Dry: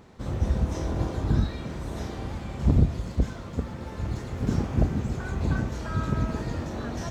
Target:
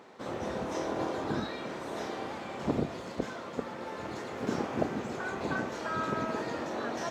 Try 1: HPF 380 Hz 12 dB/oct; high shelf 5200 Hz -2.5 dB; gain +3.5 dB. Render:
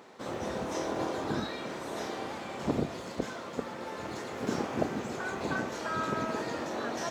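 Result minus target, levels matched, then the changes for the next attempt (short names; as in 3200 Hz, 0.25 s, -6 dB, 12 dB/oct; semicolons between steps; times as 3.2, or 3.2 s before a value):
8000 Hz band +4.0 dB
change: high shelf 5200 Hz -9 dB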